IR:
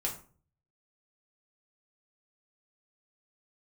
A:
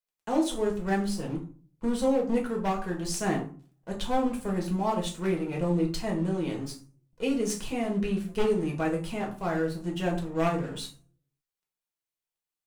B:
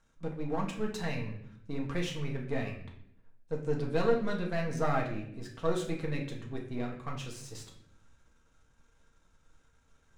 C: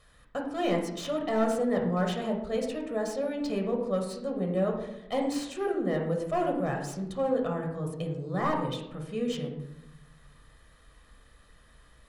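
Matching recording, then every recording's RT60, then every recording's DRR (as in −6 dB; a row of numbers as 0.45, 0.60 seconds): A; 0.45, 0.65, 0.95 seconds; −2.0, −1.0, 1.0 decibels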